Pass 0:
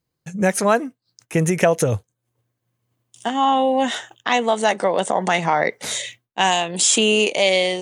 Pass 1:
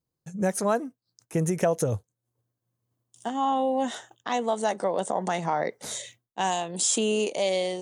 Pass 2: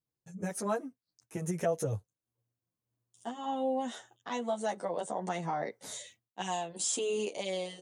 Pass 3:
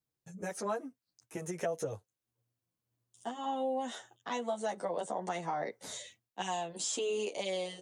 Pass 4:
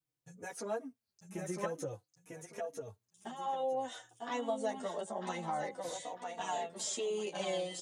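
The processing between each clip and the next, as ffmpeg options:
-af "equalizer=f=2400:t=o:w=1.3:g=-9.5,volume=0.473"
-filter_complex "[0:a]asplit=2[s0][s1];[s1]adelay=9.9,afreqshift=-1.8[s2];[s0][s2]amix=inputs=2:normalize=1,volume=0.562"
-filter_complex "[0:a]acrossover=split=300|7600[s0][s1][s2];[s0]acompressor=threshold=0.00355:ratio=4[s3];[s1]acompressor=threshold=0.0251:ratio=4[s4];[s2]acompressor=threshold=0.00141:ratio=4[s5];[s3][s4][s5]amix=inputs=3:normalize=0,volume=1.12"
-filter_complex "[0:a]aecho=1:1:949|1898|2847|3796:0.596|0.155|0.0403|0.0105,asplit=2[s0][s1];[s1]adelay=3.5,afreqshift=-0.52[s2];[s0][s2]amix=inputs=2:normalize=1"

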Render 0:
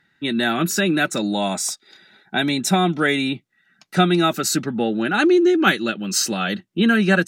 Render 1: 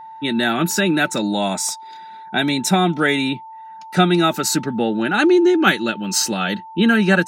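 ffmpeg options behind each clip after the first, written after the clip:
-af "aeval=exprs='val(0)+0.0158*sin(2*PI*890*n/s)':c=same,volume=1.19"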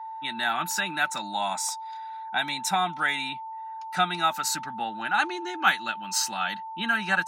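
-af "lowshelf=f=630:t=q:w=3:g=-11,volume=0.422"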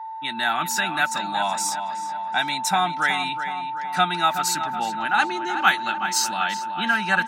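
-filter_complex "[0:a]asplit=2[s0][s1];[s1]adelay=373,lowpass=f=3200:p=1,volume=0.355,asplit=2[s2][s3];[s3]adelay=373,lowpass=f=3200:p=1,volume=0.54,asplit=2[s4][s5];[s5]adelay=373,lowpass=f=3200:p=1,volume=0.54,asplit=2[s6][s7];[s7]adelay=373,lowpass=f=3200:p=1,volume=0.54,asplit=2[s8][s9];[s9]adelay=373,lowpass=f=3200:p=1,volume=0.54,asplit=2[s10][s11];[s11]adelay=373,lowpass=f=3200:p=1,volume=0.54[s12];[s0][s2][s4][s6][s8][s10][s12]amix=inputs=7:normalize=0,volume=1.5"

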